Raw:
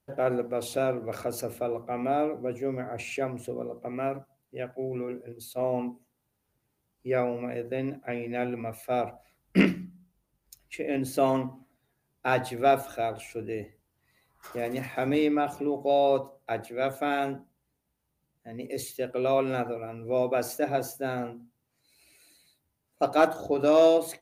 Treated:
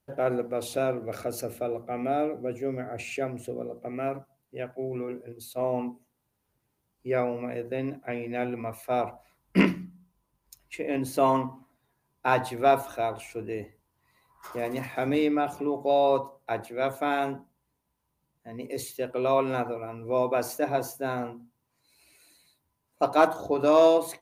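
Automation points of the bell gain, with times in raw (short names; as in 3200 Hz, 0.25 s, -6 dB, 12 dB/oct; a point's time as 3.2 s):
bell 1000 Hz 0.28 oct
0 dB
from 1.03 s -8 dB
from 4.08 s +4 dB
from 8.64 s +12.5 dB
from 14.84 s +3 dB
from 15.59 s +11 dB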